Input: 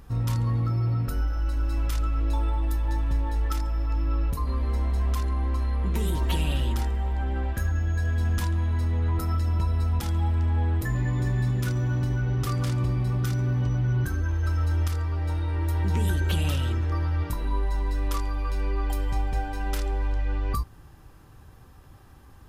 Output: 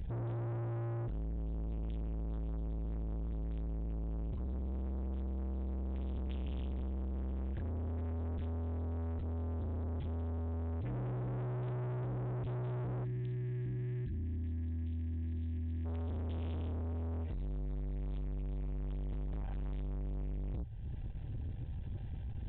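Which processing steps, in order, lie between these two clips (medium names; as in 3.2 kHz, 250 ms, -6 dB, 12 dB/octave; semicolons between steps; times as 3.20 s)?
resonant low shelf 190 Hz +10.5 dB, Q 3; static phaser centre 490 Hz, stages 4; compression 2.5:1, threshold -32 dBFS, peak gain reduction 14.5 dB; valve stage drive 41 dB, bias 0.35; resampled via 8 kHz; time-frequency box 13.04–15.85 s, 370–1600 Hz -19 dB; trim +4.5 dB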